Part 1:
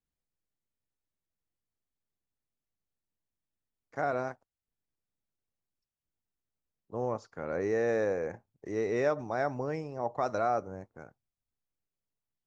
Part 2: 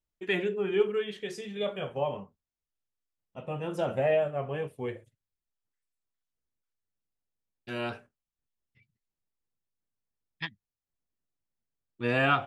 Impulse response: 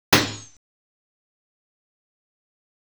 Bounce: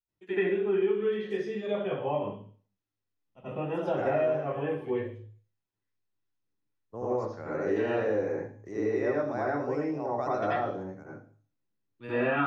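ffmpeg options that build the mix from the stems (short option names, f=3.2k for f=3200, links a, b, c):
-filter_complex "[0:a]agate=range=-33dB:threshold=-48dB:ratio=3:detection=peak,volume=-4dB,asplit=2[a][b];[b]volume=-22dB[c];[1:a]volume=-12.5dB,asplit=2[d][e];[e]volume=-12dB[f];[2:a]atrim=start_sample=2205[g];[c][f]amix=inputs=2:normalize=0[h];[h][g]afir=irnorm=-1:irlink=0[i];[a][d][i]amix=inputs=3:normalize=0,acrossover=split=270|2500[j][k][l];[j]acompressor=threshold=-42dB:ratio=4[m];[k]acompressor=threshold=-25dB:ratio=4[n];[l]acompressor=threshold=-56dB:ratio=4[o];[m][n][o]amix=inputs=3:normalize=0"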